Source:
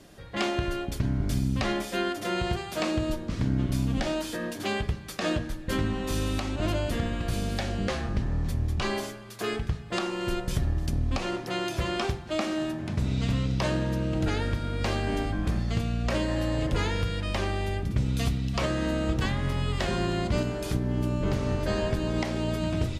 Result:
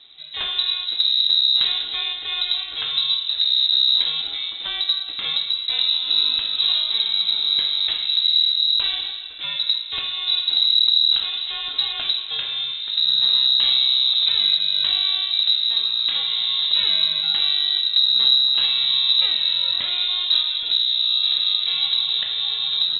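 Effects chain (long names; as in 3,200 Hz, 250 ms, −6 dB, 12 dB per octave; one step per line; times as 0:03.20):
spectral tilt −1.5 dB per octave
on a send at −5.5 dB: convolution reverb RT60 2.2 s, pre-delay 23 ms
on the sum: voice inversion scrambler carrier 3,900 Hz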